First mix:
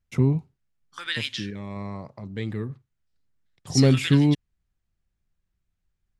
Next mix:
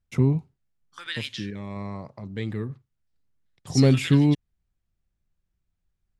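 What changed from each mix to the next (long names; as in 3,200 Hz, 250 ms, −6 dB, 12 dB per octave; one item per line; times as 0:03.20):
second voice −4.0 dB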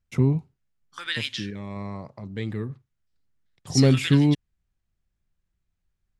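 second voice +4.0 dB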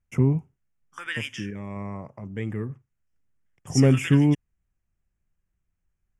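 master: add Butterworth band-reject 4,100 Hz, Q 1.5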